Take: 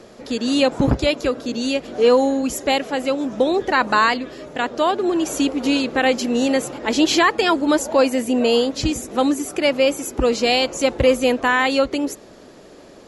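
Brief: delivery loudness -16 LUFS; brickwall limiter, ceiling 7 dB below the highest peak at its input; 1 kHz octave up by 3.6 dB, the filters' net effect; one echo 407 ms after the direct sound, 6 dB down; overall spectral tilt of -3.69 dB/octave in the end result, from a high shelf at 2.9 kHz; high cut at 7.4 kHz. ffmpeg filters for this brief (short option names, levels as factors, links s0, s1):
-af "lowpass=7400,equalizer=f=1000:t=o:g=5.5,highshelf=f=2900:g=-8.5,alimiter=limit=0.335:level=0:latency=1,aecho=1:1:407:0.501,volume=1.5"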